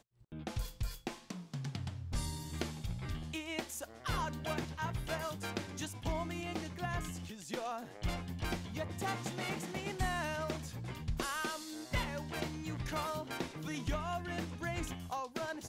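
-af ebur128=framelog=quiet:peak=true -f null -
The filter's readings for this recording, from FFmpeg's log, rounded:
Integrated loudness:
  I:         -39.8 LUFS
  Threshold: -49.8 LUFS
Loudness range:
  LRA:         2.3 LU
  Threshold: -59.6 LUFS
  LRA low:   -40.9 LUFS
  LRA high:  -38.6 LUFS
True peak:
  Peak:      -18.1 dBFS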